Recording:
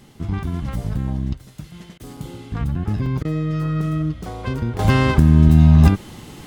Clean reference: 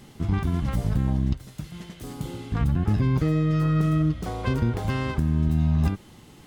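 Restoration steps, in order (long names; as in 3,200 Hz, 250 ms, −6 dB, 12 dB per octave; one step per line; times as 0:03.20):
repair the gap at 0:02.17/0:03.06, 2.9 ms
repair the gap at 0:01.98/0:03.23, 17 ms
level correction −11 dB, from 0:04.79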